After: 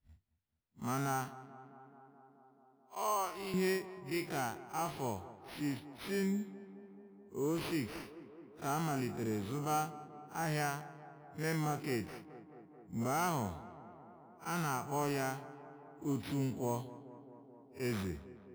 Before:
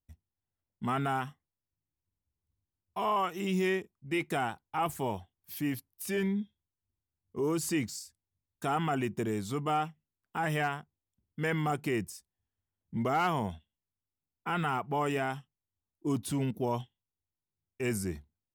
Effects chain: time blur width 80 ms; 1.28–3.54 HPF 380 Hz 12 dB/oct; sample-and-hold 6×; tape echo 0.216 s, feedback 87%, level -15 dB, low-pass 1800 Hz; gain -3 dB

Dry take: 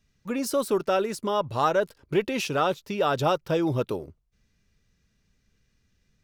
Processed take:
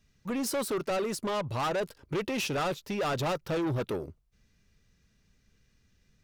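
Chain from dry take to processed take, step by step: soft clip -28.5 dBFS, distortion -7 dB; gain +1.5 dB

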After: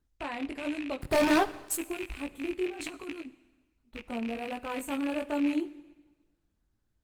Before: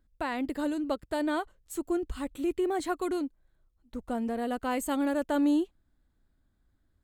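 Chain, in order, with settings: rattling part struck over -42 dBFS, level -22 dBFS; 1.01–1.75 sample leveller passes 5; 2.68–3.26 negative-ratio compressor -34 dBFS, ratio -0.5; 4.35–4.99 gate with hold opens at -42 dBFS; chorus 1.3 Hz, delay 17 ms, depth 5.1 ms; reverb RT60 1.2 s, pre-delay 42 ms, DRR 15.5 dB; gain -1 dB; Opus 20 kbps 48000 Hz

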